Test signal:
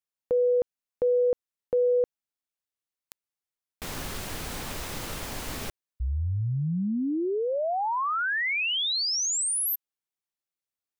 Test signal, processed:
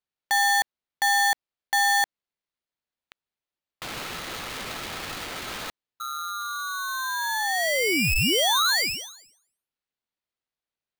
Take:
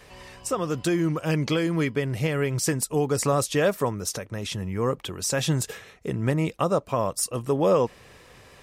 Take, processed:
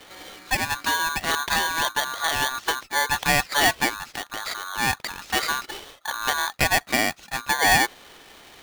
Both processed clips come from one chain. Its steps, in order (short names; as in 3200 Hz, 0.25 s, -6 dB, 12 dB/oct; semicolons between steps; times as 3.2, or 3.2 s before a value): steep low-pass 3400 Hz 36 dB/oct; low shelf 410 Hz -12 dB; polarity switched at an audio rate 1300 Hz; gain +6.5 dB